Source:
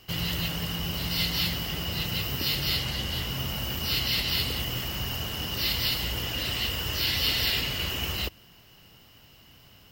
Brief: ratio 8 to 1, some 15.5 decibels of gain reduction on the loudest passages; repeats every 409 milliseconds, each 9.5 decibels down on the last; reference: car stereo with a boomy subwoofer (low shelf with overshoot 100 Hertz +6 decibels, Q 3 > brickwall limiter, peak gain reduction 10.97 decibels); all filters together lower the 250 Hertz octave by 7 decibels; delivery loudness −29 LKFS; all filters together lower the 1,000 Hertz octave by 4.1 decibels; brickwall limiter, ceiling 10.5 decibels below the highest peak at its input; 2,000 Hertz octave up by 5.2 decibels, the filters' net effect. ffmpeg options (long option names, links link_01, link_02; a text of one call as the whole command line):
ffmpeg -i in.wav -af "equalizer=frequency=250:width_type=o:gain=-8,equalizer=frequency=1000:width_type=o:gain=-8,equalizer=frequency=2000:width_type=o:gain=8.5,acompressor=threshold=-37dB:ratio=8,alimiter=level_in=12dB:limit=-24dB:level=0:latency=1,volume=-12dB,lowshelf=frequency=100:width_type=q:width=3:gain=6,aecho=1:1:409|818|1227|1636:0.335|0.111|0.0365|0.012,volume=19.5dB,alimiter=limit=-21.5dB:level=0:latency=1" out.wav